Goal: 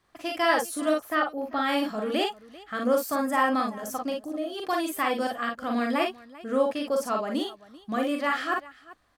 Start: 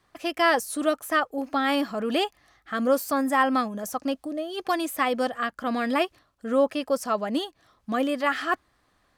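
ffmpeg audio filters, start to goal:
ffmpeg -i in.wav -filter_complex "[0:a]asettb=1/sr,asplit=3[link_01][link_02][link_03];[link_01]atrim=end=0.994[link_04];[link_02]atrim=start=0.99:end=1.57,asetpts=PTS-STARTPTS,afade=type=in:duration=0.004:curve=qsin,afade=type=out:start_time=0.576:duration=0.004:curve=qsin,equalizer=frequency=8500:width_type=o:width=0.91:gain=-15[link_05];[link_03]atrim=start=1.566[link_06];[link_04][link_05]acrossfade=duration=0.004:curve1=hsin:curve2=qsin[link_07];[link_07][link_06]acrossfade=duration=0.004:curve1=qsin:curve2=hsin,aecho=1:1:42|55|392:0.631|0.473|0.112,volume=-3.5dB" out.wav

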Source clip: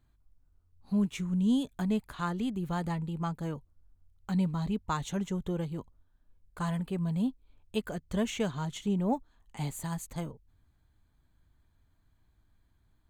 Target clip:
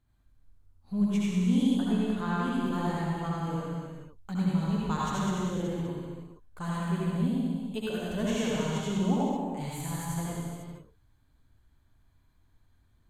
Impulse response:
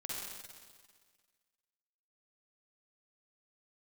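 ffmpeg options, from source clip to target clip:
-filter_complex "[0:a]asettb=1/sr,asplit=3[link_01][link_02][link_03];[link_01]atrim=end=1.694[link_04];[link_02]atrim=start=1.69:end=2.4,asetpts=PTS-STARTPTS,afade=type=in:duration=0.004:curve=qsin,afade=type=out:start_time=0.706:duration=0.004:curve=qsin,highshelf=frequency=6900:gain=-11[link_05];[link_03]atrim=start=2.396[link_06];[link_04][link_05]acrossfade=duration=0.004:curve1=hsin:curve2=qsin[link_07];[link_07][link_06]acrossfade=duration=0.004:curve1=qsin:curve2=hsin[link_08];[1:a]atrim=start_sample=2205,afade=type=out:start_time=0.45:duration=0.01,atrim=end_sample=20286,asetrate=30429,aresample=44100[link_09];[link_08][link_09]afir=irnorm=-1:irlink=0"

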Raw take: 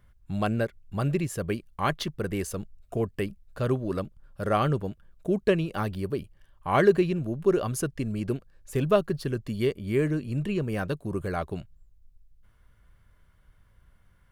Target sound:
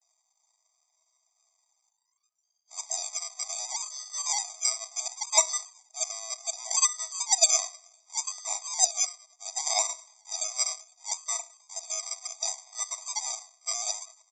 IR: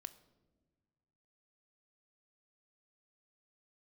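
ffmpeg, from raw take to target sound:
-filter_complex "[0:a]areverse,bandreject=frequency=50:width_type=h:width=6,bandreject=frequency=100:width_type=h:width=6,bandreject=frequency=150:width_type=h:width=6,bandreject=frequency=200:width_type=h:width=6,bandreject=frequency=250:width_type=h:width=6,asplit=2[link_01][link_02];[link_02]asplit=4[link_03][link_04][link_05][link_06];[link_03]adelay=103,afreqshift=-44,volume=-22.5dB[link_07];[link_04]adelay=206,afreqshift=-88,volume=-27.4dB[link_08];[link_05]adelay=309,afreqshift=-132,volume=-32.3dB[link_09];[link_06]adelay=412,afreqshift=-176,volume=-37.1dB[link_10];[link_07][link_08][link_09][link_10]amix=inputs=4:normalize=0[link_11];[link_01][link_11]amix=inputs=2:normalize=0[link_12];[1:a]atrim=start_sample=2205,atrim=end_sample=3969[link_13];[link_12][link_13]afir=irnorm=-1:irlink=0,aresample=16000,acrusher=samples=14:mix=1:aa=0.000001:lfo=1:lforange=8.4:lforate=0.68,aresample=44100,aexciter=amount=13:drive=5.9:freq=4700,afftfilt=real='re*eq(mod(floor(b*sr/1024/640),2),1)':imag='im*eq(mod(floor(b*sr/1024/640),2),1)':win_size=1024:overlap=0.75"

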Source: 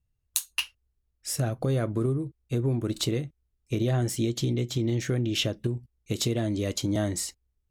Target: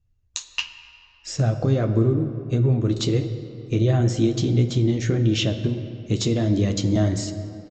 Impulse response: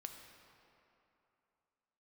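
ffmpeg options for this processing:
-filter_complex "[0:a]flanger=delay=9.1:depth=3.3:regen=-37:speed=1.5:shape=sinusoidal,asplit=2[link_01][link_02];[1:a]atrim=start_sample=2205,lowshelf=frequency=470:gain=9.5[link_03];[link_02][link_03]afir=irnorm=-1:irlink=0,volume=5.5dB[link_04];[link_01][link_04]amix=inputs=2:normalize=0,aresample=16000,aresample=44100"

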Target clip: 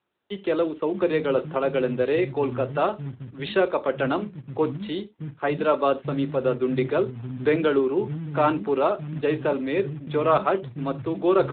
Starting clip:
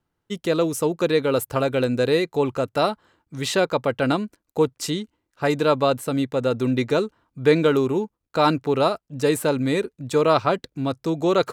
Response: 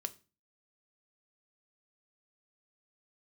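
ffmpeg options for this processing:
-filter_complex "[0:a]asettb=1/sr,asplit=3[link_01][link_02][link_03];[link_01]atrim=end=4.204[link_04];[link_02]atrim=start=4.2:end=4.84,asetpts=PTS-STARTPTS,afade=type=in:duration=0.004:curve=qsin,afade=type=out:start_time=0.636:duration=0.004:curve=qsin,bandreject=frequency=50:width_type=h:width=6,bandreject=frequency=100:width_type=h:width=6[link_05];[link_03]atrim=start=4.836[link_06];[link_04][link_05]acrossfade=duration=0.004:curve1=hsin:curve2=qsin[link_07];[link_07][link_06]acrossfade=duration=0.004:curve1=qsin:curve2=hsin,asplit=3[link_08][link_09][link_10];[link_08]afade=type=out:start_time=8.03:duration=0.02[link_11];[link_09]aeval=exprs='0.501*(cos(1*acos(clip(val(0)/0.501,-1,1)))-cos(1*PI/2))+0.00398*(cos(3*acos(clip(val(0)/0.501,-1,1)))-cos(3*PI/2))+0.00708*(cos(4*acos(clip(val(0)/0.501,-1,1)))-cos(4*PI/2))+0.0316*(cos(6*acos(clip(val(0)/0.501,-1,1)))-cos(6*PI/2))':channel_layout=same,afade=type=in:start_time=8.03:duration=0.02,afade=type=out:start_time=8.45:duration=0.02[link_12];[link_10]afade=type=in:start_time=8.45:duration=0.02[link_13];[link_11][link_12][link_13]amix=inputs=3:normalize=0,acrossover=split=200[link_14][link_15];[link_14]adelay=620[link_16];[link_16][link_15]amix=inputs=2:normalize=0[link_17];[1:a]atrim=start_sample=2205,atrim=end_sample=4410,asetrate=41895,aresample=44100[link_18];[link_17][link_18]afir=irnorm=-1:irlink=0,acrossover=split=270|1200[link_19][link_20][link_21];[link_19]acrusher=bits=3:mode=log:mix=0:aa=0.000001[link_22];[link_22][link_20][link_21]amix=inputs=3:normalize=0" -ar 8000 -c:a libopencore_amrnb -b:a 10200

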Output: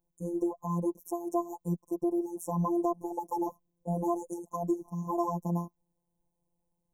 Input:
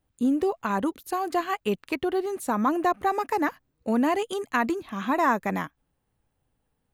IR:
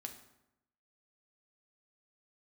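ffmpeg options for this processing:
-filter_complex "[0:a]afftfilt=real='re*(1-between(b*sr/4096,1100,5400))':imag='im*(1-between(b*sr/4096,1100,5400))':win_size=4096:overlap=0.75,adynamicequalizer=threshold=0.0178:dfrequency=220:dqfactor=1.7:tfrequency=220:tqfactor=1.7:attack=5:release=100:ratio=0.375:range=2:mode=boostabove:tftype=bell,acrossover=split=440[link_01][link_02];[link_02]acompressor=threshold=-23dB:ratio=6[link_03];[link_01][link_03]amix=inputs=2:normalize=0,afftfilt=real='hypot(re,im)*cos(PI*b)':imag='0':win_size=1024:overlap=0.75,equalizer=frequency=2300:width_type=o:width=1.5:gain=-8,volume=-1.5dB"

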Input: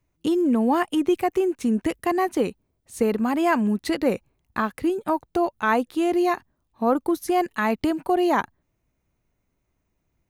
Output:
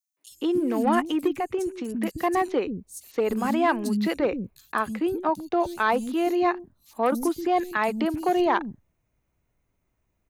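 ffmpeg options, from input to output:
ffmpeg -i in.wav -filter_complex "[0:a]asettb=1/sr,asplit=3[link_01][link_02][link_03];[link_01]atrim=end=1.104[link_04];[link_02]atrim=start=1.1:end=2.03,asetpts=PTS-STARTPTS,afade=type=in:duration=0.004:curve=qsin,afade=type=out:start_time=0.926:duration=0.004:curve=qsin,acompressor=threshold=-22dB:ratio=6[link_05];[link_03]atrim=start=2.026[link_06];[link_04][link_05]acrossfade=duration=0.004:curve1=hsin:curve2=qsin[link_07];[link_07][link_06]acrossfade=duration=0.004:curve1=qsin:curve2=hsin,volume=14.5dB,asoftclip=hard,volume=-14.5dB,acrossover=split=260|4800[link_08][link_09][link_10];[link_09]adelay=170[link_11];[link_08]adelay=300[link_12];[link_12][link_11][link_10]amix=inputs=3:normalize=0" out.wav

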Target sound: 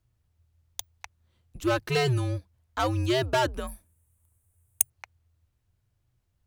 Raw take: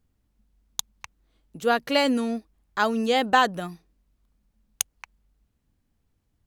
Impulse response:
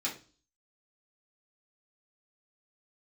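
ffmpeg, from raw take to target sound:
-filter_complex "[0:a]asoftclip=type=hard:threshold=-18dB,afreqshift=-130,asettb=1/sr,asplit=3[link_01][link_02][link_03];[link_01]atrim=end=3.674[link_04];[link_02]atrim=start=3.67:end=4.9,asetpts=PTS-STARTPTS,afade=type=in:duration=0.004:curve=qsin,afade=type=out:start_time=1.226:duration=0.004:curve=qsin,highshelf=frequency=6800:width_type=q:width=3:gain=12.5[link_05];[link_03]atrim=start=4.896[link_06];[link_04][link_05]acrossfade=duration=0.004:curve1=hsin:curve2=qsin[link_07];[link_07][link_06]acrossfade=duration=0.004:curve1=qsin:curve2=hsin,volume=-1.5dB"

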